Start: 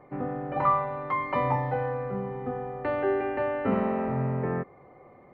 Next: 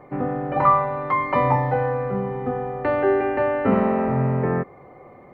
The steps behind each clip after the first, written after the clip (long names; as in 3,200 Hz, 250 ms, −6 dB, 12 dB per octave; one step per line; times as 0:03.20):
dynamic equaliser 3,200 Hz, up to −3 dB, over −49 dBFS, Q 2.1
level +7 dB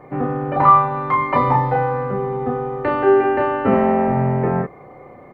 double-tracking delay 33 ms −3 dB
level +2.5 dB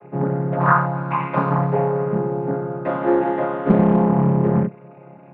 channel vocoder with a chord as carrier major triad, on C#3
highs frequency-modulated by the lows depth 0.57 ms
level −1 dB